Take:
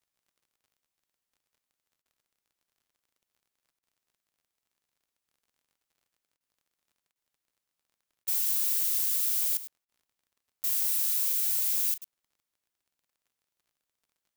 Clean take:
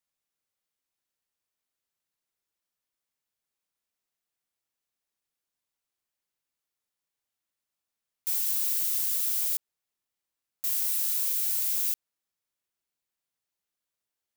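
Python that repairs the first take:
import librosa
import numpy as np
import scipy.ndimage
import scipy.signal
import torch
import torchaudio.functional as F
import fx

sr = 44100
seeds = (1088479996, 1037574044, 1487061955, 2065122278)

y = fx.fix_declick_ar(x, sr, threshold=6.5)
y = fx.fix_interpolate(y, sr, at_s=(2.02, 3.79, 6.37, 7.12, 8.24, 9.85, 11.98), length_ms=35.0)
y = fx.fix_echo_inverse(y, sr, delay_ms=103, level_db=-13.5)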